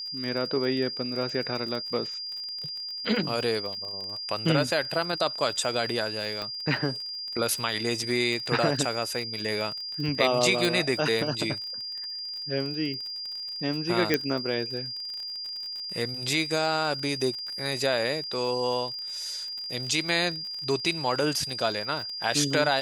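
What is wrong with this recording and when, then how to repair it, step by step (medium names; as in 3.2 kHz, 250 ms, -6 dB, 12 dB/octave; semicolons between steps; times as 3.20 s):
crackle 41 per s -34 dBFS
whine 4.8 kHz -33 dBFS
6.42 s: pop -20 dBFS
10.65 s: pop
14.14 s: pop -8 dBFS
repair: de-click; band-stop 4.8 kHz, Q 30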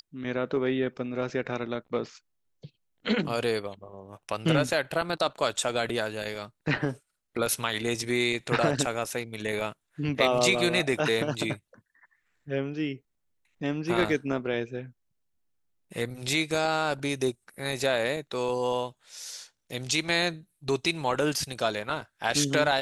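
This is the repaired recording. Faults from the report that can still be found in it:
10.65 s: pop
14.14 s: pop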